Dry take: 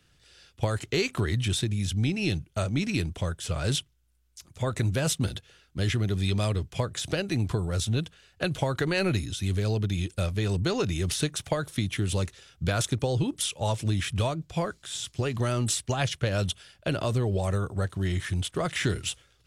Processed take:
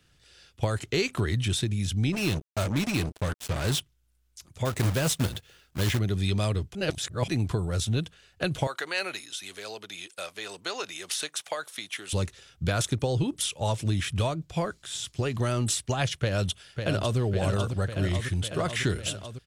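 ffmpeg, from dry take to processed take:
ffmpeg -i in.wav -filter_complex "[0:a]asplit=3[link_01][link_02][link_03];[link_01]afade=type=out:start_time=2.12:duration=0.02[link_04];[link_02]acrusher=bits=4:mix=0:aa=0.5,afade=type=in:start_time=2.12:duration=0.02,afade=type=out:start_time=3.79:duration=0.02[link_05];[link_03]afade=type=in:start_time=3.79:duration=0.02[link_06];[link_04][link_05][link_06]amix=inputs=3:normalize=0,asettb=1/sr,asplit=3[link_07][link_08][link_09];[link_07]atrim=end=4.654[link_10];[link_08]atrim=start=4.65:end=5.99,asetpts=PTS-STARTPTS,afade=type=in:duration=0.004:curve=qsin,afade=type=out:start_time=1.336:duration=0.004:curve=qsin,acrusher=bits=2:mode=log:mix=0:aa=0.000001[link_11];[link_09]atrim=start=5.986[link_12];[link_10][link_11]acrossfade=duration=0.004:curve1=hsin:curve2=qsin[link_13];[link_13][link_12]acrossfade=duration=0.004:curve1=qsin:curve2=hsin,asettb=1/sr,asplit=3[link_14][link_15][link_16];[link_14]atrim=end=8.674[link_17];[link_15]atrim=start=8.67:end=12.13,asetpts=PTS-STARTPTS,afade=type=in:duration=0.004:curve=qsin,afade=type=out:start_time=3.456:duration=0.004:curve=qsin,highpass=710[link_18];[link_16]atrim=start=12.126[link_19];[link_17][link_18]acrossfade=duration=0.004:curve1=hsin:curve2=qsin[link_20];[link_20][link_19]acrossfade=duration=0.004:curve1=qsin:curve2=hsin,asplit=2[link_21][link_22];[link_22]afade=type=in:start_time=16.21:duration=0.01,afade=type=out:start_time=17.18:duration=0.01,aecho=0:1:550|1100|1650|2200|2750|3300|3850|4400|4950|5500|6050|6600:0.501187|0.37589|0.281918|0.211438|0.158579|0.118934|0.0892006|0.0669004|0.0501753|0.0376315|0.0282236|0.0211677[link_23];[link_21][link_23]amix=inputs=2:normalize=0,asplit=3[link_24][link_25][link_26];[link_24]atrim=end=6.752[link_27];[link_25]atrim=start=6.748:end=7.282,asetpts=PTS-STARTPTS,areverse[link_28];[link_26]atrim=start=7.278[link_29];[link_27][link_28]acrossfade=duration=0.004:curve1=hsin:curve2=hsin[link_30];[link_30][link_29]acrossfade=duration=0.004:curve1=hsin:curve2=hsin" out.wav

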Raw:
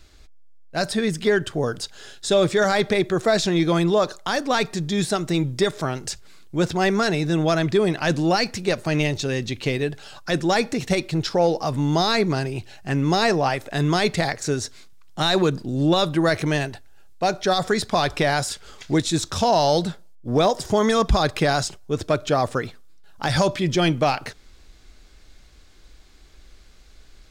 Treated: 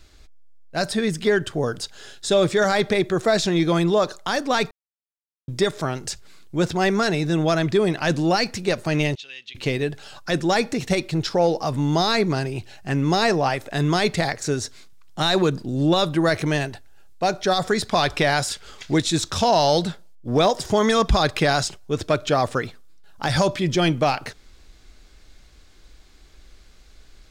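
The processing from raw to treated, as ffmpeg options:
ffmpeg -i in.wav -filter_complex "[0:a]asettb=1/sr,asplit=3[link_01][link_02][link_03];[link_01]atrim=end=9.154[link_04];[link_02]atrim=start=9.15:end=9.55,asetpts=PTS-STARTPTS,afade=type=in:duration=0.004:curve=qsin,afade=type=out:start_time=0.396:duration=0.004:curve=qsin,bandpass=frequency=3000:width_type=q:width=3.9[link_05];[link_03]atrim=start=9.546[link_06];[link_04][link_05]acrossfade=duration=0.004:curve1=hsin:curve2=qsin[link_07];[link_07][link_06]acrossfade=duration=0.004:curve1=qsin:curve2=hsin,asettb=1/sr,asplit=3[link_08][link_09][link_10];[link_08]atrim=end=17.864[link_11];[link_09]atrim=start=17.86:end=22.65,asetpts=PTS-STARTPTS,afade=type=in:duration=0.004:curve=qsin,afade=type=out:start_time=4.786:duration=0.004:curve=qsin,equalizer=frequency=2800:width=0.63:gain=3[link_12];[link_10]atrim=start=22.646[link_13];[link_11][link_12]acrossfade=duration=0.004:curve1=hsin:curve2=qsin[link_14];[link_14][link_13]acrossfade=duration=0.004:curve1=qsin:curve2=hsin,asplit=3[link_15][link_16][link_17];[link_15]atrim=end=4.71,asetpts=PTS-STARTPTS,afade=type=out:start_time=4.706:duration=0.004:curve=hsin[link_18];[link_16]atrim=start=4.71:end=5.48,asetpts=PTS-STARTPTS,volume=0[link_19];[link_17]atrim=start=5.48,asetpts=PTS-STARTPTS,afade=type=in:duration=0.004:curve=hsin[link_20];[link_18][link_19][link_20]concat=n=3:v=0:a=1" out.wav

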